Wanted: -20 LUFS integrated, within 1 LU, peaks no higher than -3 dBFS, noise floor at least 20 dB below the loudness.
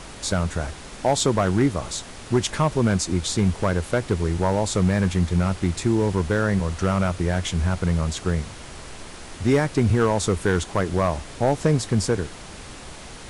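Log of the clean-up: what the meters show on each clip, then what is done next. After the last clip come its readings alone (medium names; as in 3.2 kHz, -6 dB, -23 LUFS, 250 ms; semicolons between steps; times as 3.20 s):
clipped samples 0.7%; clipping level -11.5 dBFS; noise floor -40 dBFS; noise floor target -43 dBFS; loudness -23.0 LUFS; peak level -11.5 dBFS; loudness target -20.0 LUFS
-> clip repair -11.5 dBFS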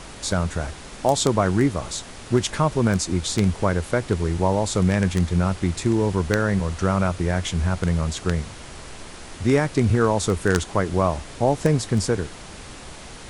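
clipped samples 0.0%; noise floor -40 dBFS; noise floor target -43 dBFS
-> noise print and reduce 6 dB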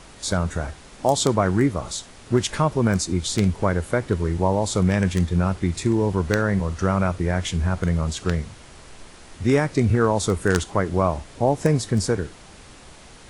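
noise floor -45 dBFS; loudness -22.5 LUFS; peak level -2.5 dBFS; loudness target -20.0 LUFS
-> trim +2.5 dB; peak limiter -3 dBFS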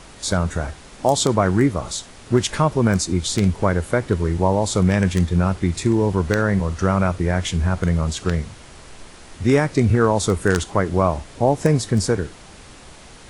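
loudness -20.0 LUFS; peak level -3.0 dBFS; noise floor -43 dBFS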